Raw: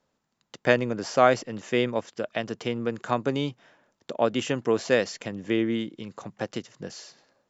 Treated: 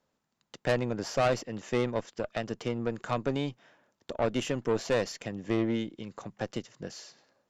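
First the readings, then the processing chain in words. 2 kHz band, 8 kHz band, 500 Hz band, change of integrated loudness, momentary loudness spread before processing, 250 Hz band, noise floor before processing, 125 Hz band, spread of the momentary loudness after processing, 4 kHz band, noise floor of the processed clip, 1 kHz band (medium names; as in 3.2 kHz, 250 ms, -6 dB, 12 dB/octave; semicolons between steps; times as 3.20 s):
-7.5 dB, no reading, -5.0 dB, -5.0 dB, 17 LU, -4.0 dB, -78 dBFS, -0.5 dB, 14 LU, -5.0 dB, -81 dBFS, -7.0 dB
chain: valve stage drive 20 dB, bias 0.6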